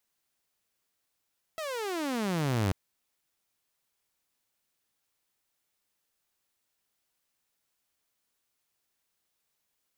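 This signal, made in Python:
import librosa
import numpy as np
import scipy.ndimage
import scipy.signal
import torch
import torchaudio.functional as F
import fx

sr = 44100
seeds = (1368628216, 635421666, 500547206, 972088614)

y = fx.riser_tone(sr, length_s=1.14, level_db=-22, wave='saw', hz=661.0, rise_st=-34.5, swell_db=9)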